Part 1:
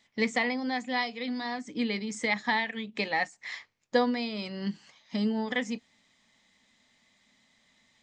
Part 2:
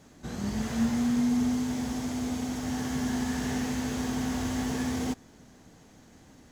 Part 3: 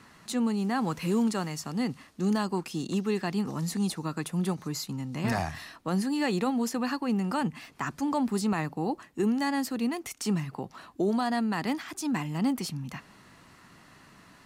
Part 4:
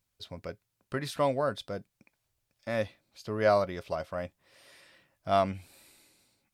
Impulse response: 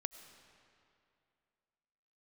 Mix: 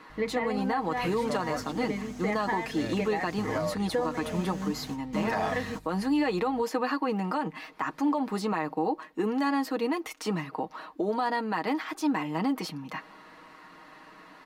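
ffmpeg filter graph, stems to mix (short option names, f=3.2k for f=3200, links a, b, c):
-filter_complex "[0:a]lowpass=1.5k,volume=0dB,asplit=2[a][b];[1:a]adelay=650,volume=-11.5dB[c];[2:a]equalizer=f=125:t=o:w=1:g=-11,equalizer=f=250:t=o:w=1:g=6,equalizer=f=500:t=o:w=1:g=8,equalizer=f=1k:t=o:w=1:g=9,equalizer=f=2k:t=o:w=1:g=5,equalizer=f=4k:t=o:w=1:g=4,equalizer=f=8k:t=o:w=1:g=-6,volume=-4.5dB[d];[3:a]bandreject=f=50:t=h:w=6,bandreject=f=100:t=h:w=6,asubboost=boost=10.5:cutoff=74,aeval=exprs='val(0)+0.00631*(sin(2*PI*50*n/s)+sin(2*PI*2*50*n/s)/2+sin(2*PI*3*50*n/s)/3+sin(2*PI*4*50*n/s)/4+sin(2*PI*5*50*n/s)/5)':c=same,adelay=100,volume=-7dB[e];[b]apad=whole_len=315934[f];[c][f]sidechaingate=range=-33dB:threshold=-58dB:ratio=16:detection=peak[g];[a][g][d][e]amix=inputs=4:normalize=0,aecho=1:1:6.4:0.63,alimiter=limit=-19dB:level=0:latency=1:release=110"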